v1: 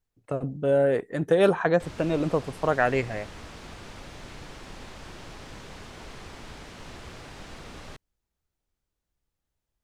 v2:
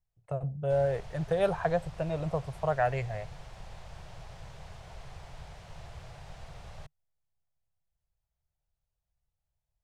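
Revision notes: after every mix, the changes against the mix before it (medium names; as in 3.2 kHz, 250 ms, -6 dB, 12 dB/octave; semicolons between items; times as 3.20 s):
background: entry -1.10 s; master: add FFT filter 150 Hz 0 dB, 260 Hz -23 dB, 680 Hz -1 dB, 1.2 kHz -9 dB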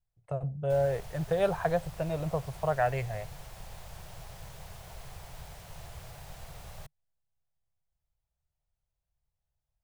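background: remove distance through air 82 m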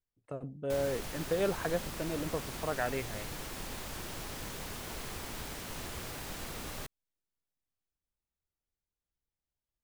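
speech -11.0 dB; master: remove FFT filter 150 Hz 0 dB, 260 Hz -23 dB, 680 Hz -1 dB, 1.2 kHz -9 dB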